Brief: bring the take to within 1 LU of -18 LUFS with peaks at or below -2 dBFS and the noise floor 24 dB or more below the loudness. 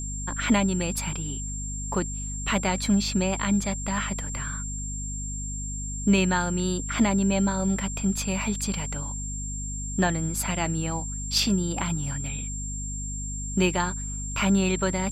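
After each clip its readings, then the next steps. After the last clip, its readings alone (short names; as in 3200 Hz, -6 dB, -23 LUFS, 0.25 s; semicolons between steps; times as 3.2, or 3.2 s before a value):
hum 50 Hz; harmonics up to 250 Hz; hum level -32 dBFS; steady tone 7400 Hz; tone level -34 dBFS; loudness -27.0 LUFS; peak -10.5 dBFS; loudness target -18.0 LUFS
-> de-hum 50 Hz, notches 5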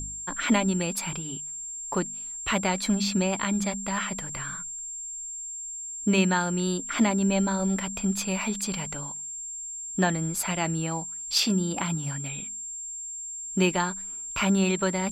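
hum none; steady tone 7400 Hz; tone level -34 dBFS
-> notch 7400 Hz, Q 30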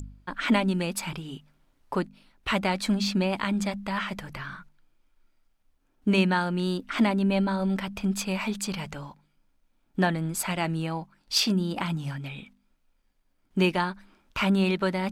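steady tone none; loudness -27.5 LUFS; peak -9.5 dBFS; loudness target -18.0 LUFS
-> gain +9.5 dB; limiter -2 dBFS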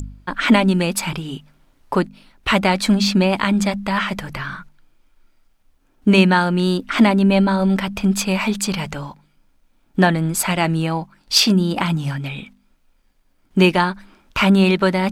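loudness -18.0 LUFS; peak -2.0 dBFS; noise floor -60 dBFS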